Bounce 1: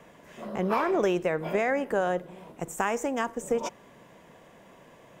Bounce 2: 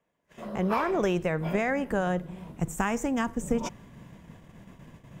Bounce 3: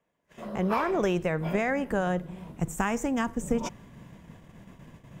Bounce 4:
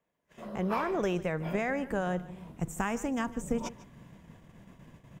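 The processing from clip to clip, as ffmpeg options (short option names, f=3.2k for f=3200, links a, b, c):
-af "asubboost=boost=8.5:cutoff=180,agate=range=-25dB:threshold=-48dB:ratio=16:detection=peak"
-af anull
-af "aecho=1:1:149:0.126,volume=-4dB"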